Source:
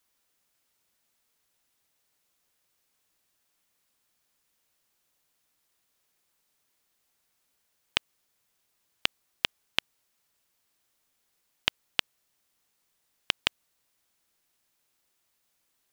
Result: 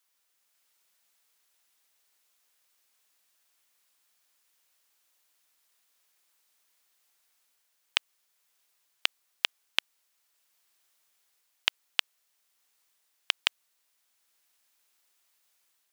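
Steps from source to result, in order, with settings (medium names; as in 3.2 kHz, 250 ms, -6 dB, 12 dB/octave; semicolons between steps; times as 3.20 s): high-pass 880 Hz 6 dB/octave; level rider gain up to 3.5 dB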